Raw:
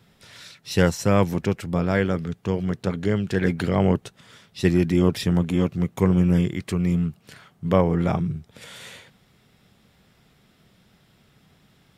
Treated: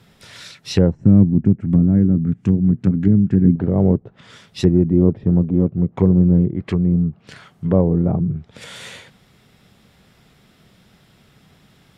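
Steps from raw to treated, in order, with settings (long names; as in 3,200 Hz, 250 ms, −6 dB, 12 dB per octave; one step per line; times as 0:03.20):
treble cut that deepens with the level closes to 470 Hz, closed at −19.5 dBFS
0:00.95–0:03.56: octave-band graphic EQ 125/250/500/1,000/4,000/8,000 Hz +4/+9/−12/−9/−10/+9 dB
level +5.5 dB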